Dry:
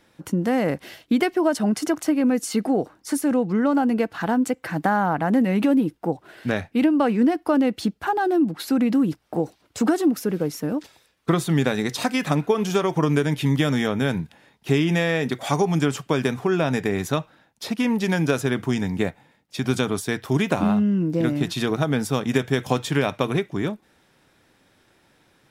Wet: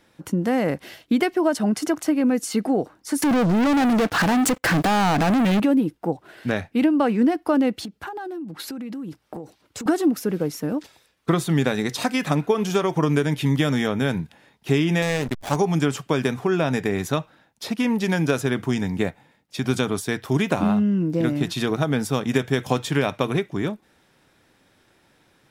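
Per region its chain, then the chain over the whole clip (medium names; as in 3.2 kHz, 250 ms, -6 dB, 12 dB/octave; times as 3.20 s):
3.22–5.60 s: compression 4:1, threshold -23 dBFS + waveshaping leveller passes 5
7.83–9.86 s: high-pass 50 Hz + band-stop 700 Hz, Q 14 + compression 16:1, threshold -29 dBFS
15.02–15.56 s: hysteresis with a dead band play -21.5 dBFS + treble shelf 4.5 kHz +9 dB + loudspeaker Doppler distortion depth 0.15 ms
whole clip: none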